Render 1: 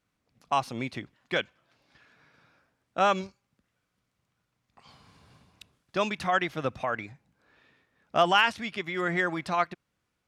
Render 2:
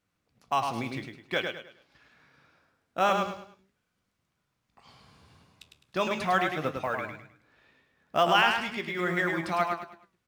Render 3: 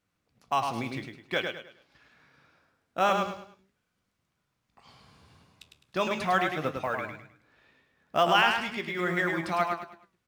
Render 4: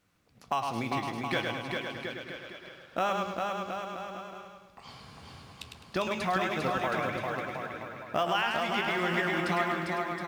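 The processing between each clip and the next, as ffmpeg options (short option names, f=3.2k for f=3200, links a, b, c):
-af "acrusher=bits=8:mode=log:mix=0:aa=0.000001,aecho=1:1:104|208|312|416:0.562|0.186|0.0612|0.0202,flanger=delay=9.7:depth=8.8:regen=68:speed=0.73:shape=triangular,volume=3dB"
-af anull
-filter_complex "[0:a]acompressor=threshold=-40dB:ratio=2.5,asplit=2[a][b];[b]aecho=0:1:400|720|976|1181|1345:0.631|0.398|0.251|0.158|0.1[c];[a][c]amix=inputs=2:normalize=0,volume=7.5dB"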